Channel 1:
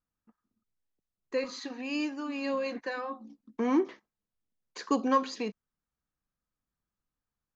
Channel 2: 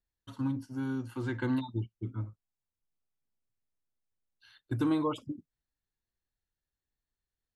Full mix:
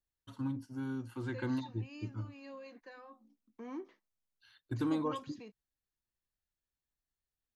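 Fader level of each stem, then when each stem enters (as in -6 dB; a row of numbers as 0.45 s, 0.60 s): -17.5 dB, -4.5 dB; 0.00 s, 0.00 s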